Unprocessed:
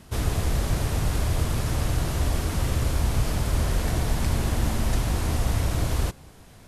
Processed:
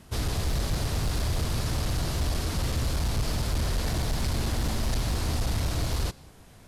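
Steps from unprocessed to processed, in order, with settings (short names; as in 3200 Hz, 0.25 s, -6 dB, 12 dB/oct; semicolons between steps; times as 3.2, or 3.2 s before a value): dynamic EQ 4500 Hz, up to +7 dB, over -55 dBFS, Q 1.7; overloaded stage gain 19.5 dB; gain -2.5 dB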